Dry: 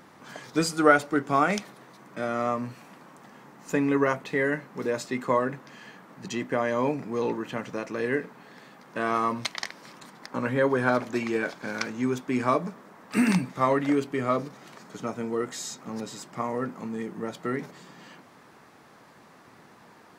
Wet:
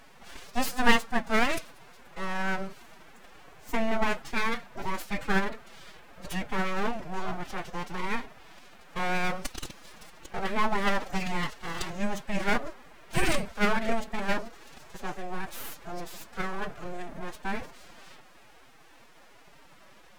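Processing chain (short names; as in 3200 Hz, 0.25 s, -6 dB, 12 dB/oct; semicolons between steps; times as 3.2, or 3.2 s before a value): full-wave rectifier; formant-preserving pitch shift +8 st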